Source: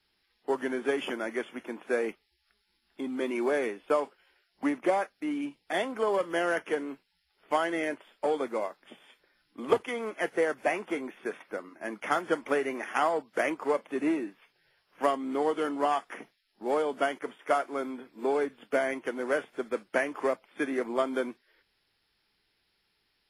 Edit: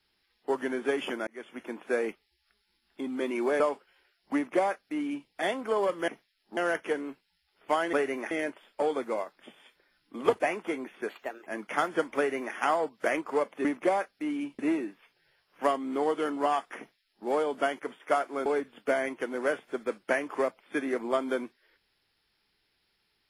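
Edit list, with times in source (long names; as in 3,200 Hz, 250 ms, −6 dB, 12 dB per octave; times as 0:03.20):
0:01.27–0:01.64: fade in
0:03.60–0:03.91: remove
0:04.66–0:05.60: duplicate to 0:13.98
0:09.84–0:10.63: remove
0:11.32–0:11.80: play speed 127%
0:12.50–0:12.88: duplicate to 0:07.75
0:16.17–0:16.66: duplicate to 0:06.39
0:17.85–0:18.31: remove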